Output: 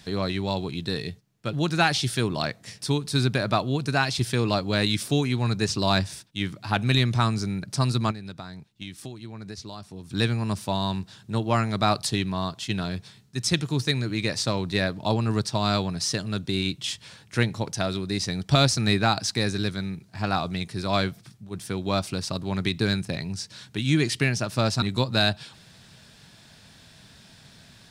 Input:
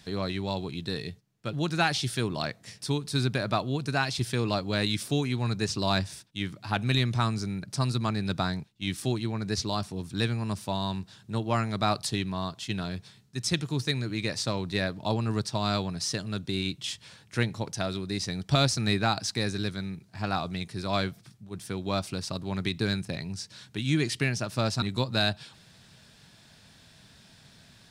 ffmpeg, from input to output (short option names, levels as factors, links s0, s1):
-filter_complex "[0:a]asettb=1/sr,asplit=3[s0][s1][s2];[s0]atrim=end=8.114[s3];[s1]atrim=start=8.11:end=10.11,asetpts=PTS-STARTPTS,afade=t=in:d=0.004:c=qsin,afade=t=out:st=1.996:d=0.004:c=qsin,acompressor=threshold=0.01:ratio=6[s4];[s2]atrim=start=10.106[s5];[s3][s4]acrossfade=d=0.004:c1=hsin:c2=qsin[s6];[s6][s5]acrossfade=d=0.004:c1=qsin:c2=hsin,volume=1.58"